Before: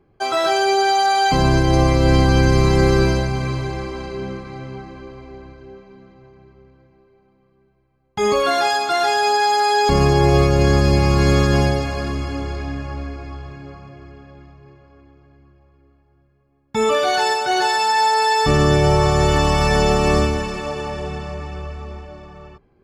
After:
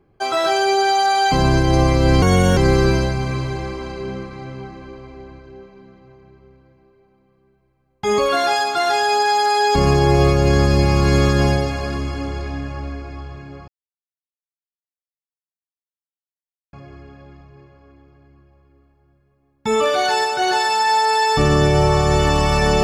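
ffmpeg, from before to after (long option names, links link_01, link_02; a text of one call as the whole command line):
ffmpeg -i in.wav -filter_complex "[0:a]asplit=4[link_01][link_02][link_03][link_04];[link_01]atrim=end=2.224[link_05];[link_02]atrim=start=2.22:end=2.71,asetpts=PTS-STARTPTS,asetrate=61740,aresample=44100,atrim=end_sample=15435,asetpts=PTS-STARTPTS[link_06];[link_03]atrim=start=2.706:end=13.82,asetpts=PTS-STARTPTS,afade=type=out:start_time=11.11:duration=0.004:curve=hsin,apad=pad_dur=3.05[link_07];[link_04]atrim=start=13.82,asetpts=PTS-STARTPTS,afade=type=in:duration=0.004:curve=hsin[link_08];[link_05][link_06]acrossfade=duration=0.004:curve1=hsin:curve2=hsin[link_09];[link_07][link_08]concat=n=2:v=0:a=1[link_10];[link_09][link_10]acrossfade=duration=0.004:curve1=hsin:curve2=hsin" out.wav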